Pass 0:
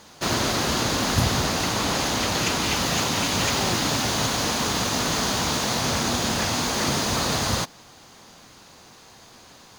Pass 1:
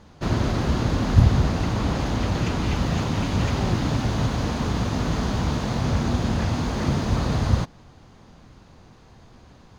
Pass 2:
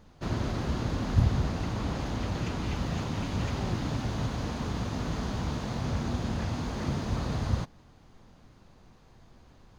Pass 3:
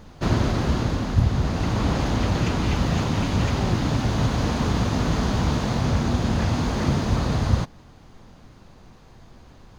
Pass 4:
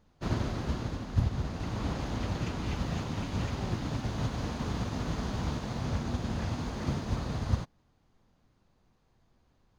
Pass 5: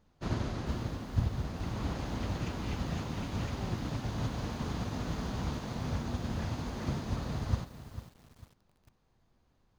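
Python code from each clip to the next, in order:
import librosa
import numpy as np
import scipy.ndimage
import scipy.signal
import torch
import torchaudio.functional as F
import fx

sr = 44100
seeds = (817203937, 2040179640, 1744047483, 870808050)

y1 = fx.riaa(x, sr, side='playback')
y1 = y1 * librosa.db_to_amplitude(-4.5)
y2 = fx.dmg_noise_colour(y1, sr, seeds[0], colour='brown', level_db=-51.0)
y2 = y2 * librosa.db_to_amplitude(-8.0)
y3 = fx.rider(y2, sr, range_db=10, speed_s=0.5)
y3 = y3 * librosa.db_to_amplitude(8.5)
y4 = fx.upward_expand(y3, sr, threshold_db=-41.0, expansion=1.5)
y4 = y4 * librosa.db_to_amplitude(-7.0)
y5 = fx.echo_crushed(y4, sr, ms=447, feedback_pct=35, bits=8, wet_db=-12.0)
y5 = y5 * librosa.db_to_amplitude(-2.5)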